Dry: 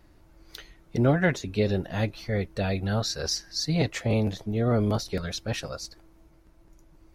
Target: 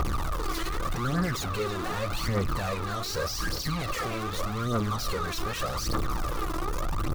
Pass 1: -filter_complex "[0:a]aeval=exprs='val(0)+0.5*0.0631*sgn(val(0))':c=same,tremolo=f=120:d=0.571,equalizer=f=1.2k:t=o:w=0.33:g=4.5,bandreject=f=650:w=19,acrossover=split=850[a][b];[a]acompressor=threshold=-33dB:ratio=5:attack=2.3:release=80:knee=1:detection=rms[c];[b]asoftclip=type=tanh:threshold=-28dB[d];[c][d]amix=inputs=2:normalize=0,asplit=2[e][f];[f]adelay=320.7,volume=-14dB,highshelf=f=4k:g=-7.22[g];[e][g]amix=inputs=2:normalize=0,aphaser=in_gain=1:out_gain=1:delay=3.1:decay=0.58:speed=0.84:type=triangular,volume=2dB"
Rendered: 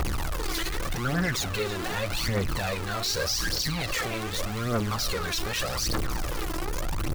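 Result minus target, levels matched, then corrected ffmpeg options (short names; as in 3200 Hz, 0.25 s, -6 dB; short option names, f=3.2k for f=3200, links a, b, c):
soft clip: distortion -7 dB; 1000 Hz band -4.0 dB
-filter_complex "[0:a]aeval=exprs='val(0)+0.5*0.0631*sgn(val(0))':c=same,tremolo=f=120:d=0.571,equalizer=f=1.2k:t=o:w=0.33:g=16,bandreject=f=650:w=19,acrossover=split=850[a][b];[a]acompressor=threshold=-33dB:ratio=5:attack=2.3:release=80:knee=1:detection=rms[c];[b]asoftclip=type=tanh:threshold=-37dB[d];[c][d]amix=inputs=2:normalize=0,asplit=2[e][f];[f]adelay=320.7,volume=-14dB,highshelf=f=4k:g=-7.22[g];[e][g]amix=inputs=2:normalize=0,aphaser=in_gain=1:out_gain=1:delay=3.1:decay=0.58:speed=0.84:type=triangular,volume=2dB"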